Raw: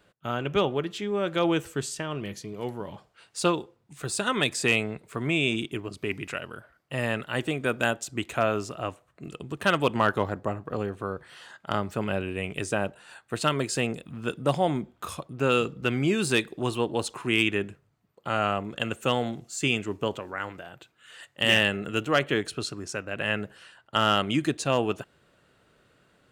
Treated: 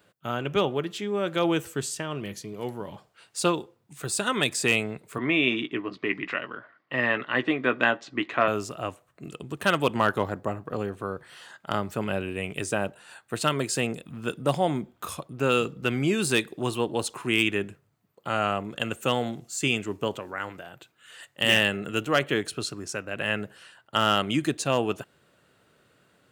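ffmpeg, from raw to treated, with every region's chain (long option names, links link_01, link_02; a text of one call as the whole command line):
ffmpeg -i in.wav -filter_complex "[0:a]asettb=1/sr,asplit=3[link_01][link_02][link_03];[link_01]atrim=end=5.184[link_04];[link_02]atrim=start=5.18:end=8.48,asetpts=PTS-STARTPTS,afade=type=in:duration=0.004:curve=qsin,afade=type=out:start_time=3.296:duration=0.004:curve=qsin,highpass=180,equalizer=frequency=290:width_type=q:width=4:gain=6,equalizer=frequency=1100:width_type=q:width=4:gain=8,equalizer=frequency=1900:width_type=q:width=4:gain=9,lowpass=frequency=4300:width=0.5412,lowpass=frequency=4300:width=1.3066,asplit=2[link_05][link_06];[link_06]adelay=16,volume=-10.5dB[link_07];[link_05][link_07]amix=inputs=2:normalize=0,atrim=end_sample=145530[link_08];[link_03]atrim=start=8.476[link_09];[link_04][link_08]acrossfade=duration=0.004:curve1=hsin:curve2=qsin[link_10];[link_10][link_09]acrossfade=duration=0.004:curve1=qsin:curve2=hsin,highpass=79,highshelf=frequency=11000:gain=9" out.wav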